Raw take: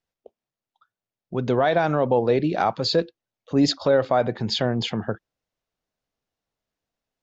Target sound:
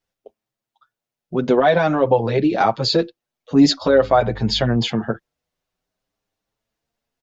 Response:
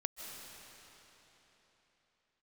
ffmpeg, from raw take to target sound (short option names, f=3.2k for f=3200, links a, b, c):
-filter_complex "[0:a]asettb=1/sr,asplit=3[a][b][c];[a]atrim=end=3.864[d];[b]atrim=start=3.86:end=4.77,asetpts=PTS-STARTPTS,afade=t=in:d=0.004:c=qsin,afade=t=out:st=0.906:d=0.004:c=qsin,aeval=exprs='val(0)+0.0112*(sin(2*PI*50*n/s)+sin(2*PI*2*50*n/s)/2+sin(2*PI*3*50*n/s)/3+sin(2*PI*4*50*n/s)/4+sin(2*PI*5*50*n/s)/5)':c=same[e];[c]atrim=start=4.766[f];[d][e]acrossfade=d=0.004:c1=hsin:c2=qsin[g];[g][f]acrossfade=d=0.004:c1=qsin:c2=hsin,asplit=2[h][i];[i]adelay=7.4,afreqshift=0.49[j];[h][j]amix=inputs=2:normalize=1,volume=7.5dB"